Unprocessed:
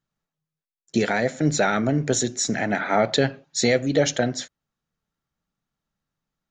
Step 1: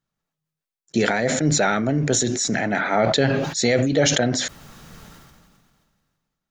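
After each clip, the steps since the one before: decay stretcher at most 29 dB/s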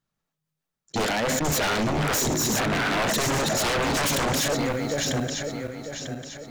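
backward echo that repeats 473 ms, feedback 60%, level -5.5 dB; wavefolder -19 dBFS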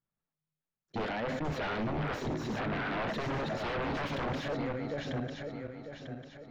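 distance through air 310 m; trim -8 dB

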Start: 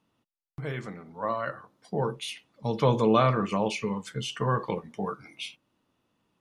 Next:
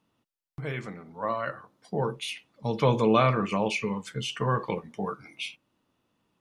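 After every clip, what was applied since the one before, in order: dynamic bell 2.4 kHz, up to +6 dB, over -52 dBFS, Q 3.8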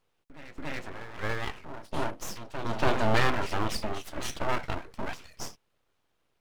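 on a send: reverse echo 283 ms -11.5 dB; on the sum: full-wave rectifier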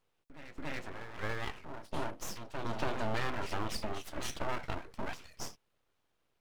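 compression 3:1, threshold -26 dBFS, peak gain reduction 7.5 dB; trim -3.5 dB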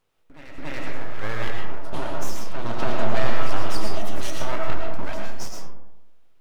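algorithmic reverb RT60 0.96 s, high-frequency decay 0.4×, pre-delay 70 ms, DRR 0 dB; trim +5.5 dB

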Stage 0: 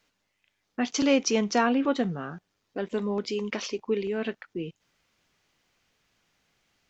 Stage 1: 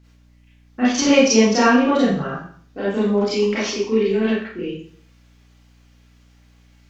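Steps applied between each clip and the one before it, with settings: Schroeder reverb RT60 0.52 s, combs from 28 ms, DRR -10 dB; hum 60 Hz, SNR 32 dB; trim -1 dB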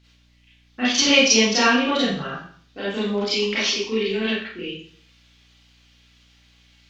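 peaking EQ 3.5 kHz +15 dB 1.7 oct; trim -6 dB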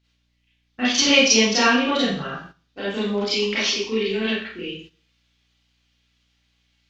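gate -42 dBFS, range -11 dB

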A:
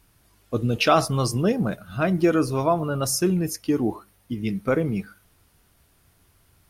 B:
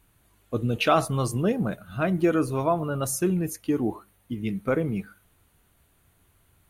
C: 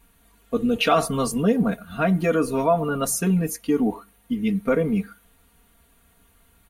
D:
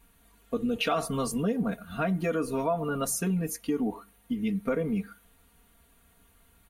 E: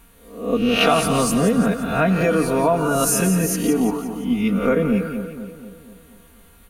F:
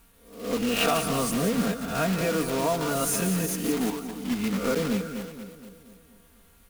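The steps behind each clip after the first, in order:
peaking EQ 5.2 kHz -13.5 dB 0.3 oct; trim -2.5 dB
comb 4.3 ms, depth 100%; in parallel at -0.5 dB: peak limiter -16.5 dBFS, peak gain reduction 10.5 dB; on the sum: trim -3.5 dB
compression 2:1, threshold -25 dBFS, peak gain reduction 6.5 dB; trim -3 dB
reverse spectral sustain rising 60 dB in 0.55 s; two-band feedback delay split 830 Hz, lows 240 ms, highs 173 ms, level -9 dB; trim +8.5 dB
block-companded coder 3-bit; trim -8 dB

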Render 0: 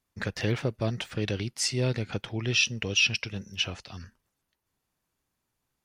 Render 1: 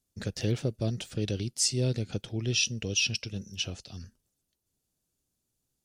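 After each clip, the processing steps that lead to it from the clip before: ten-band graphic EQ 1 kHz -11 dB, 2 kHz -10 dB, 8 kHz +5 dB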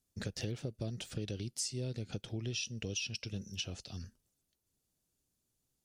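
compression 6:1, threshold -34 dBFS, peak gain reduction 11.5 dB; trim -1.5 dB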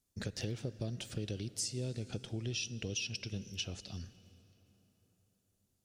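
reverberation RT60 4.5 s, pre-delay 43 ms, DRR 16 dB

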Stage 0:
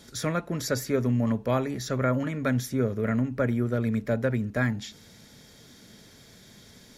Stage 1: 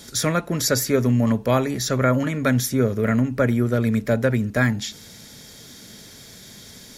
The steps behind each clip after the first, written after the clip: treble shelf 3.9 kHz +7.5 dB; trim +6 dB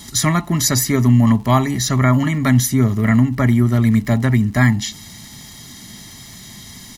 comb 1 ms, depth 92%; crackle 160 per s -38 dBFS; trim +3 dB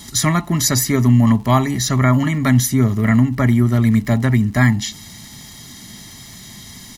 no audible change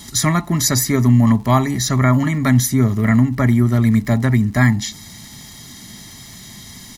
dynamic bell 2.9 kHz, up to -7 dB, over -50 dBFS, Q 6.1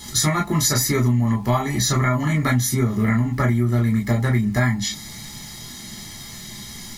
reverberation, pre-delay 8 ms, DRR -1 dB; compression, threshold -13 dBFS, peak gain reduction 9 dB; trim -2.5 dB

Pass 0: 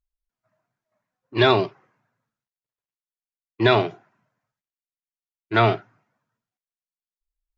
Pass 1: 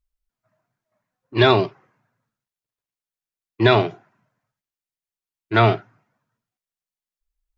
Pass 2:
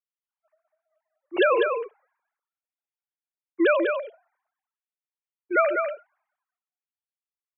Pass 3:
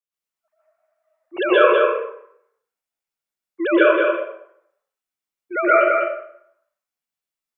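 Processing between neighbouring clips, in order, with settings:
bass shelf 150 Hz +4.5 dB; trim +1.5 dB
formants replaced by sine waves; delay 198 ms -5.5 dB; trim -5.5 dB
plate-style reverb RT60 0.67 s, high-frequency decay 0.75×, pre-delay 110 ms, DRR -9.5 dB; trim -3 dB

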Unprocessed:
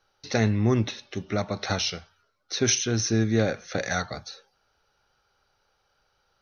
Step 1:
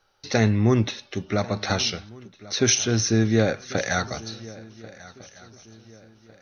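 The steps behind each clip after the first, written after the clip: shuffle delay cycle 1454 ms, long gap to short 3:1, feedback 34%, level -20 dB; trim +3 dB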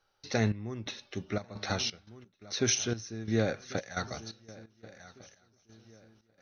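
trance gate "xxx..xxx.xx.x." 87 bpm -12 dB; trim -8 dB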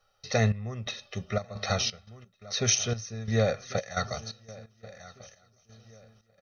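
comb 1.6 ms, depth 97%; trim +1 dB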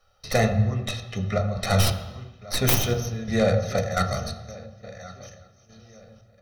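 tracing distortion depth 0.24 ms; on a send at -4 dB: reverberation RT60 1.1 s, pre-delay 3 ms; on the sum: trim +3.5 dB

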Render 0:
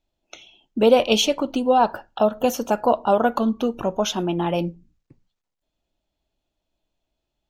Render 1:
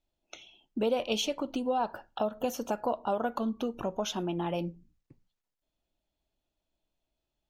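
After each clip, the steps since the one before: compression 2:1, threshold -26 dBFS, peak gain reduction 9 dB; trim -5.5 dB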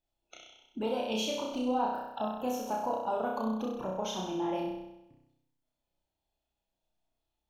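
coarse spectral quantiser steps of 15 dB; peaking EQ 850 Hz +5.5 dB 0.46 oct; on a send: flutter echo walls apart 5.5 m, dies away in 0.9 s; on the sum: trim -6 dB

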